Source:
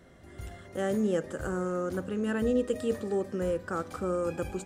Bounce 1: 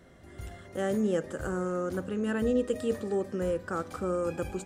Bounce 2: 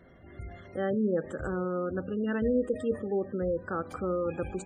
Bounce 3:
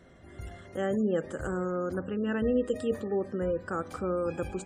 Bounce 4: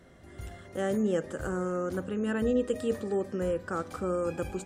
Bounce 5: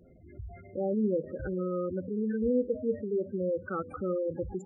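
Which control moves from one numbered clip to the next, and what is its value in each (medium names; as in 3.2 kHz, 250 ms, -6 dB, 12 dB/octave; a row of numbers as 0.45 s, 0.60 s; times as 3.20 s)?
spectral gate, under each frame's peak: -60 dB, -25 dB, -35 dB, -50 dB, -10 dB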